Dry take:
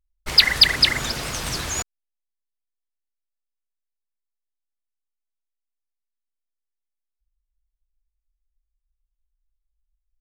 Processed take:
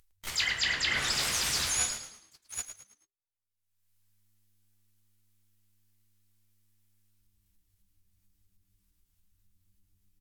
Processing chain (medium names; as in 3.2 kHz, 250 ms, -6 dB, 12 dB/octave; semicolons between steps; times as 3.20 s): tilt shelf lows -5.5 dB; feedback comb 72 Hz, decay 0.21 s, harmonics all, mix 80%; delay 794 ms -21.5 dB; low-pass that closes with the level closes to 2.8 kHz, closed at -16.5 dBFS; treble shelf 12 kHz +9.5 dB; gate -43 dBFS, range -57 dB; in parallel at +2 dB: upward compressor, threshold -24 dBFS; on the sum: harmony voices +7 st -6 dB; reverse; compression 10:1, threshold -27 dBFS, peak gain reduction 20 dB; reverse; frequency-shifting echo 108 ms, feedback 38%, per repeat -100 Hz, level -9.5 dB